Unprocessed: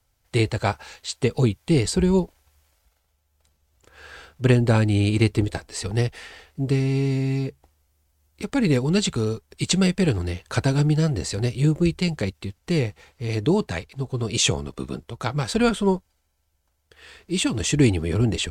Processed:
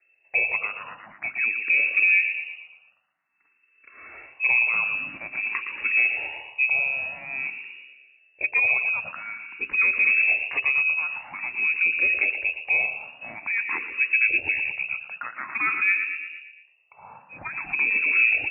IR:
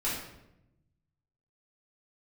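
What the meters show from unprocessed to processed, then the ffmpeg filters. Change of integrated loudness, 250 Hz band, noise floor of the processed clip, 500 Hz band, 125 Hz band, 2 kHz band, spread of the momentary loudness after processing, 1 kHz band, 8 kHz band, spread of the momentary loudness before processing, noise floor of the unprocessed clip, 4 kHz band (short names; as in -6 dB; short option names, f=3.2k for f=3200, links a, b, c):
+1.0 dB, under -25 dB, -65 dBFS, -19.5 dB, under -30 dB, +14.0 dB, 16 LU, -4.0 dB, under -40 dB, 11 LU, -70 dBFS, under -15 dB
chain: -filter_complex "[0:a]asplit=2[a][b];[b]aecho=0:1:116|232|348|464|580|696:0.2|0.112|0.0626|0.035|0.0196|0.011[c];[a][c]amix=inputs=2:normalize=0,alimiter=limit=-17.5dB:level=0:latency=1:release=124,lowpass=f=2.3k:t=q:w=0.5098,lowpass=f=2.3k:t=q:w=0.6013,lowpass=f=2.3k:t=q:w=0.9,lowpass=f=2.3k:t=q:w=2.563,afreqshift=-2700,highpass=51,bandreject=f=66.25:t=h:w=4,bandreject=f=132.5:t=h:w=4,bandreject=f=198.75:t=h:w=4,bandreject=f=265:t=h:w=4,bandreject=f=331.25:t=h:w=4,bandreject=f=397.5:t=h:w=4,bandreject=f=463.75:t=h:w=4,bandreject=f=530:t=h:w=4,bandreject=f=596.25:t=h:w=4,bandreject=f=662.5:t=h:w=4,asplit=2[d][e];[e]asplit=4[f][g][h][i];[f]adelay=114,afreqshift=77,volume=-14dB[j];[g]adelay=228,afreqshift=154,volume=-20.6dB[k];[h]adelay=342,afreqshift=231,volume=-27.1dB[l];[i]adelay=456,afreqshift=308,volume=-33.7dB[m];[j][k][l][m]amix=inputs=4:normalize=0[n];[d][n]amix=inputs=2:normalize=0,asplit=2[o][p];[p]afreqshift=0.49[q];[o][q]amix=inputs=2:normalize=1,volume=5.5dB"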